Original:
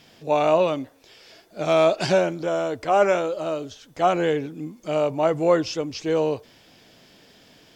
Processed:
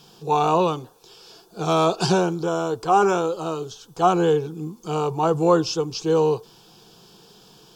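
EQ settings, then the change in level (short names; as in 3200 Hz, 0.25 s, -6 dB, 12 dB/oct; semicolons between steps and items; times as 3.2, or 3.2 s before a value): fixed phaser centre 400 Hz, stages 8; +6.0 dB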